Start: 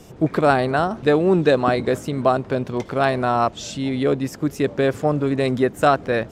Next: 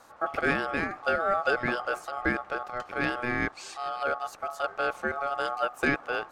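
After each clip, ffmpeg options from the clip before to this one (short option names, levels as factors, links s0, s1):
-af "bandreject=f=50:t=h:w=6,bandreject=f=100:t=h:w=6,bandreject=f=150:t=h:w=6,bandreject=f=200:t=h:w=6,bandreject=f=250:t=h:w=6,bandreject=f=300:t=h:w=6,aeval=exprs='val(0)*sin(2*PI*980*n/s)':c=same,volume=0.447"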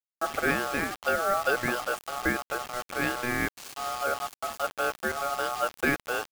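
-af "acrusher=bits=5:mix=0:aa=0.000001"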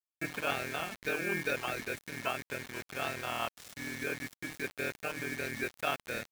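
-af "aeval=exprs='val(0)*sin(2*PI*1000*n/s)':c=same,volume=0.596"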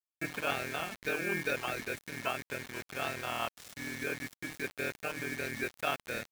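-af anull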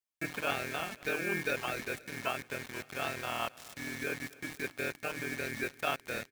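-af "aecho=1:1:264|528|792|1056|1320:0.0794|0.0477|0.0286|0.0172|0.0103"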